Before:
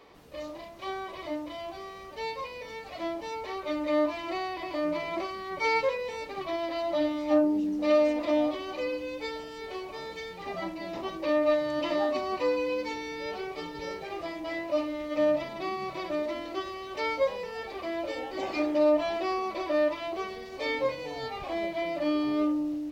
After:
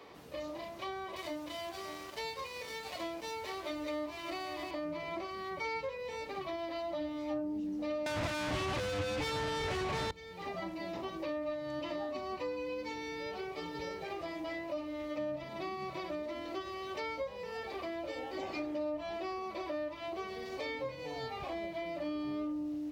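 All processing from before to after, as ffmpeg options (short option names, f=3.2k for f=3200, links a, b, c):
-filter_complex "[0:a]asettb=1/sr,asplit=3[a][b][c];[a]atrim=end=1.164[d];[b]atrim=start=1.16:end=4.71,asetpts=PTS-STARTPTS,afade=t=in:d=0.004:c=qsin,afade=t=out:st=3.546:d=0.004:c=qsin,highshelf=f=3k:g=9,aecho=1:1:584:0.237,atrim=end_sample=156555,aeval=exprs='sgn(val(0))*max(abs(val(0))-0.00473,0)':c=same[e];[c]atrim=start=4.706[f];[d][e]acrossfade=d=0.004:c1=hsin:c2=qsin[g];[g][f]acrossfade=d=0.004:c1=qsin:c2=hsin,asettb=1/sr,asplit=3[h][i][j];[h]atrim=end=8.064[k];[i]atrim=start=8.06:end=10.11,asetpts=PTS-STARTPTS,afade=t=in:d=0.004:c=qsin,afade=t=out:st=2.046:d=0.004:c=qsin,highpass=150,asplit=2[l][m];[m]highpass=f=720:p=1,volume=31dB,asoftclip=type=tanh:threshold=-17dB[n];[l][n]amix=inputs=2:normalize=0,lowpass=f=1.9k:p=1,volume=-6dB,aeval=exprs='0.15*sin(PI/2*2.82*val(0)/0.15)':c=same[o];[j]atrim=start=10.106[p];[k][o]acrossfade=d=0.004:c1=hsin:c2=qsin[q];[q][p]acrossfade=d=0.004:c1=qsin:c2=hsin,highpass=70,acrossover=split=140[r][s];[s]acompressor=threshold=-40dB:ratio=4[t];[r][t]amix=inputs=2:normalize=0,volume=1.5dB"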